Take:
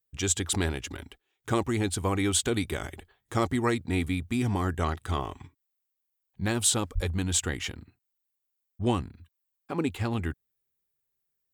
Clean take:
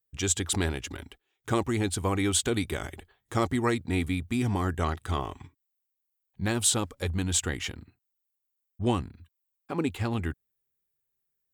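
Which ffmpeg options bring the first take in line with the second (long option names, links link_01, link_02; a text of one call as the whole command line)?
ffmpeg -i in.wav -filter_complex "[0:a]asplit=3[link_01][link_02][link_03];[link_01]afade=type=out:start_time=6.94:duration=0.02[link_04];[link_02]highpass=frequency=140:width=0.5412,highpass=frequency=140:width=1.3066,afade=type=in:start_time=6.94:duration=0.02,afade=type=out:start_time=7.06:duration=0.02[link_05];[link_03]afade=type=in:start_time=7.06:duration=0.02[link_06];[link_04][link_05][link_06]amix=inputs=3:normalize=0" out.wav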